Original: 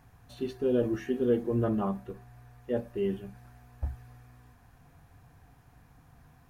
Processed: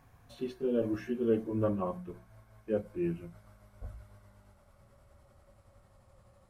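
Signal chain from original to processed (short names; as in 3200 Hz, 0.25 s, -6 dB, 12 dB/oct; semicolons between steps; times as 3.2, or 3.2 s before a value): gliding pitch shift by -5 st starting unshifted; notches 60/120/180 Hz; small resonant body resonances 550/1100/2200 Hz, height 7 dB; gain -2.5 dB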